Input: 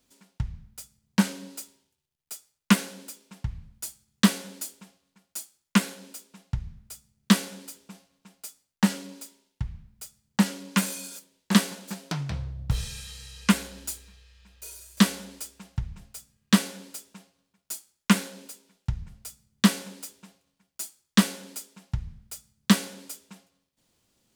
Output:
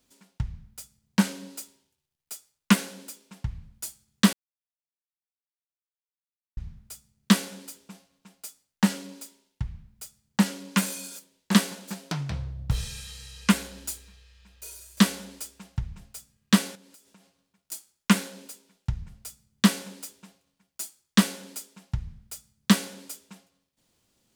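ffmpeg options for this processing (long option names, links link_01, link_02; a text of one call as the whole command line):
ffmpeg -i in.wav -filter_complex "[0:a]asettb=1/sr,asplit=3[link_01][link_02][link_03];[link_01]atrim=end=16.754[link_04];[link_02]atrim=start=16.75:end=17.72,asetpts=PTS-STARTPTS,afade=type=in:duration=0.004:curve=qsin,afade=type=out:start_time=0.966:duration=0.004:curve=qsin,acompressor=threshold=-53dB:ratio=4:attack=3.2:release=140:knee=1:detection=peak[link_05];[link_03]atrim=start=17.716[link_06];[link_04][link_05]acrossfade=duration=0.004:curve1=hsin:curve2=qsin[link_07];[link_07][link_06]acrossfade=duration=0.004:curve1=qsin:curve2=hsin,asplit=3[link_08][link_09][link_10];[link_08]atrim=end=4.33,asetpts=PTS-STARTPTS,afade=type=out:start_time=4.326:duration=0.004:curve=hsin[link_11];[link_09]atrim=start=4.33:end=6.57,asetpts=PTS-STARTPTS,volume=0[link_12];[link_10]atrim=start=6.57,asetpts=PTS-STARTPTS,afade=type=in:duration=0.004:curve=hsin[link_13];[link_11][link_12][link_13]concat=n=3:v=0:a=1" out.wav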